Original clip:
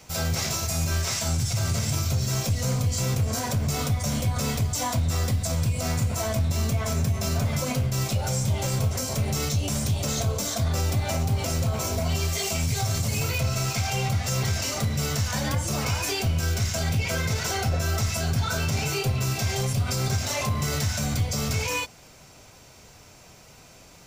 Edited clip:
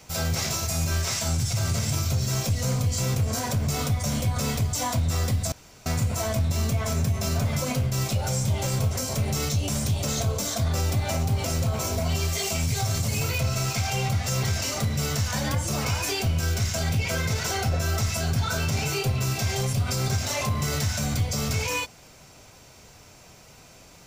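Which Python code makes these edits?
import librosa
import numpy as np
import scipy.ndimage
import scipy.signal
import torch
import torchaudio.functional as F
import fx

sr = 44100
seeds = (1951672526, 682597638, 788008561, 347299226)

y = fx.edit(x, sr, fx.room_tone_fill(start_s=5.52, length_s=0.34), tone=tone)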